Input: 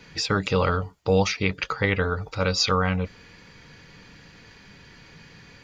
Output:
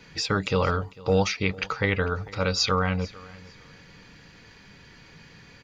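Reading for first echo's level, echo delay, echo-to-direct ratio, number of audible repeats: -21.5 dB, 448 ms, -21.5 dB, 2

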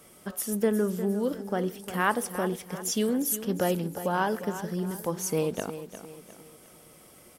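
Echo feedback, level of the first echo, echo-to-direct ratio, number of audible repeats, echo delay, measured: 41%, -12.0 dB, -11.0 dB, 3, 354 ms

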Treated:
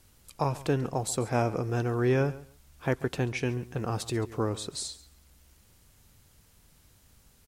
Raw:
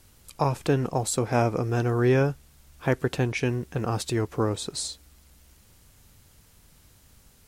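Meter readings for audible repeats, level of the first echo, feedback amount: 2, -18.0 dB, 18%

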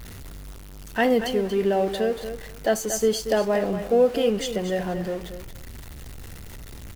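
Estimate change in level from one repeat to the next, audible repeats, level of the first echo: -16.0 dB, 2, -10.0 dB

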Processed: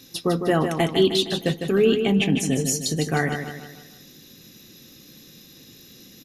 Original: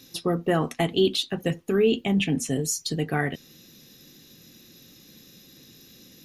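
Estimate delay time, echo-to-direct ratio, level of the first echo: 154 ms, -6.0 dB, -7.0 dB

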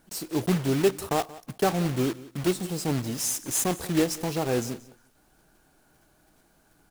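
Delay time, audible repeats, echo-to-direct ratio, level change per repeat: 179 ms, 2, -19.0 dB, -15.5 dB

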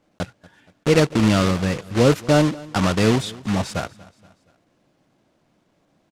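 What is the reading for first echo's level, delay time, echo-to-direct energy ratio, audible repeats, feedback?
-21.5 dB, 237 ms, -20.5 dB, 3, 47%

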